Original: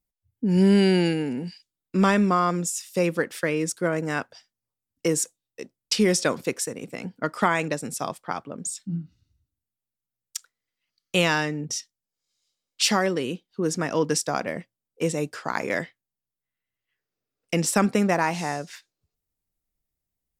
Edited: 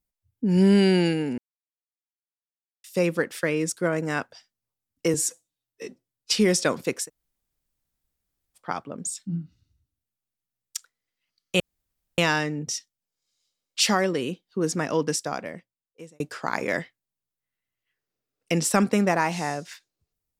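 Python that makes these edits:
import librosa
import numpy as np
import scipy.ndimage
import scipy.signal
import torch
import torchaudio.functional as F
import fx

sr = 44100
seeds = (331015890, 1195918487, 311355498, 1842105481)

y = fx.edit(x, sr, fx.silence(start_s=1.38, length_s=1.46),
    fx.stretch_span(start_s=5.14, length_s=0.8, factor=1.5),
    fx.room_tone_fill(start_s=6.65, length_s=1.54, crossfade_s=0.1),
    fx.insert_room_tone(at_s=11.2, length_s=0.58),
    fx.fade_out_span(start_s=13.85, length_s=1.37), tone=tone)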